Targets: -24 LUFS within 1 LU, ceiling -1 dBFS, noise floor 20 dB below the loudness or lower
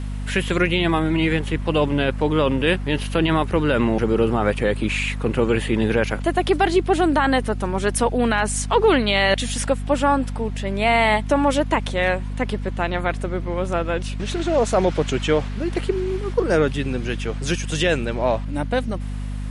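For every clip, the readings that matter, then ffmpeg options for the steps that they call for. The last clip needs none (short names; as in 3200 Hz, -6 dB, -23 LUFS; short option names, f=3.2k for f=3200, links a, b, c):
hum 50 Hz; harmonics up to 250 Hz; hum level -25 dBFS; loudness -21.0 LUFS; peak -6.0 dBFS; loudness target -24.0 LUFS
-> -af "bandreject=f=50:t=h:w=4,bandreject=f=100:t=h:w=4,bandreject=f=150:t=h:w=4,bandreject=f=200:t=h:w=4,bandreject=f=250:t=h:w=4"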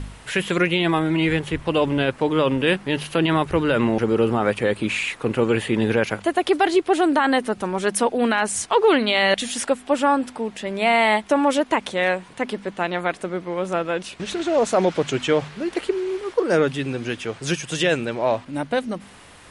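hum none; loudness -21.5 LUFS; peak -7.0 dBFS; loudness target -24.0 LUFS
-> -af "volume=-2.5dB"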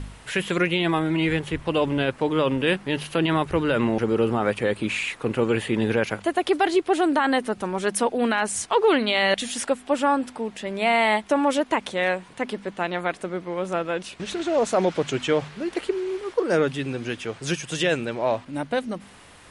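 loudness -24.0 LUFS; peak -9.5 dBFS; noise floor -48 dBFS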